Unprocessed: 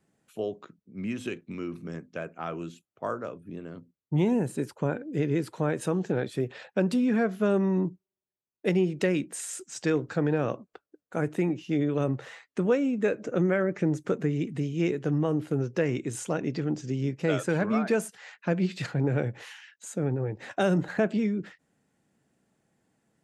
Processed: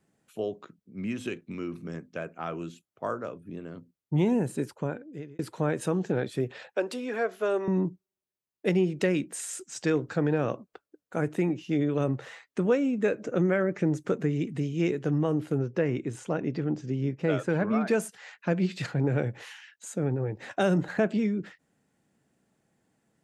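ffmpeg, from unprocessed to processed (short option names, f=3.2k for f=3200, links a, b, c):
-filter_complex "[0:a]asettb=1/sr,asplit=3[a][b][c];[a]atrim=end=6.734[d];[b]atrim=start=6.73:end=7.68,asetpts=PTS-STARTPTS,afade=t=in:d=0.004:c=qsin,afade=t=out:st=0.946:d=0.004:c=qsin,highpass=f=350:w=0.5412,highpass=f=350:w=1.3066[e];[c]atrim=start=7.676[f];[d][e]acrossfade=d=0.004:c1=hsin:c2=qsin[g];[g][f]acrossfade=d=0.004:c1=qsin:c2=hsin,asettb=1/sr,asplit=3[h][i][j];[h]atrim=end=15.584[k];[i]atrim=start=15.58:end=17.81,asetpts=PTS-STARTPTS,afade=t=in:d=0.004:c=qsin,afade=t=out:st=2.226:d=0.004:c=qsin,lowpass=f=2.3k:p=1[l];[j]atrim=start=17.806[m];[k][l]acrossfade=d=0.004:c1=hsin:c2=qsin[n];[n][m]acrossfade=d=0.004:c1=qsin:c2=hsin,asplit=2[o][p];[o]atrim=end=5.39,asetpts=PTS-STARTPTS,afade=t=out:st=4.62:d=0.77[q];[p]atrim=start=5.39,asetpts=PTS-STARTPTS,afade=t=in:d=0.004:c=hsin[r];[q][r]concat=n=2:v=0:a=1"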